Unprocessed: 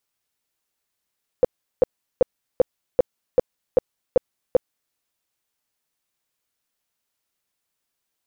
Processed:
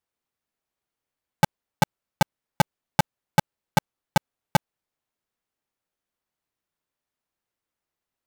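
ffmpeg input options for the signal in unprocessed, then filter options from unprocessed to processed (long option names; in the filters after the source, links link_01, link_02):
-f lavfi -i "aevalsrc='0.335*sin(2*PI*507*mod(t,0.39))*lt(mod(t,0.39),8/507)':duration=3.51:sample_rate=44100"
-af "highshelf=frequency=2100:gain=-12,aeval=exprs='val(0)*sgn(sin(2*PI*350*n/s))':channel_layout=same"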